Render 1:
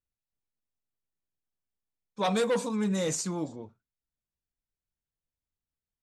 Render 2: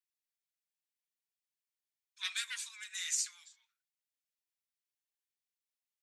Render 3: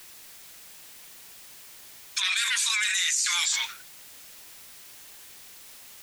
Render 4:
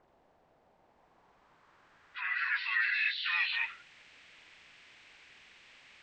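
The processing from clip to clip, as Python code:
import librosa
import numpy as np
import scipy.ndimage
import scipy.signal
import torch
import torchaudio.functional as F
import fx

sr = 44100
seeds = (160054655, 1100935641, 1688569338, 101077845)

y1 = scipy.signal.sosfilt(scipy.signal.butter(6, 1700.0, 'highpass', fs=sr, output='sos'), x)
y2 = fx.env_flatten(y1, sr, amount_pct=100)
y2 = y2 * 10.0 ** (5.5 / 20.0)
y3 = fx.freq_compress(y2, sr, knee_hz=1300.0, ratio=1.5)
y3 = fx.filter_sweep_lowpass(y3, sr, from_hz=730.0, to_hz=2400.0, start_s=0.76, end_s=3.05, q=2.0)
y3 = y3 * 10.0 ** (-7.0 / 20.0)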